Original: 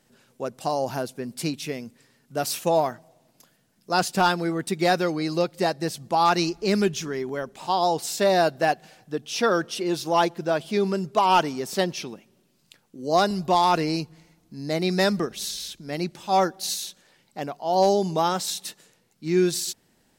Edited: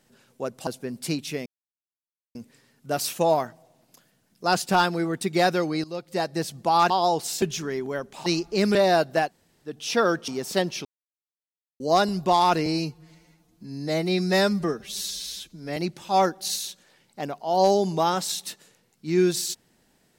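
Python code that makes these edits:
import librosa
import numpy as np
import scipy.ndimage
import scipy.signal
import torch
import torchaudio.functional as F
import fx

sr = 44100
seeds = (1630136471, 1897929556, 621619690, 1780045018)

y = fx.edit(x, sr, fx.cut(start_s=0.67, length_s=0.35),
    fx.insert_silence(at_s=1.81, length_s=0.89),
    fx.fade_in_from(start_s=5.3, length_s=0.53, floor_db=-17.0),
    fx.swap(start_s=6.36, length_s=0.49, other_s=7.69, other_length_s=0.52),
    fx.room_tone_fill(start_s=8.72, length_s=0.44, crossfade_s=0.16),
    fx.cut(start_s=9.74, length_s=1.76),
    fx.silence(start_s=12.07, length_s=0.95),
    fx.stretch_span(start_s=13.88, length_s=2.07, factor=1.5), tone=tone)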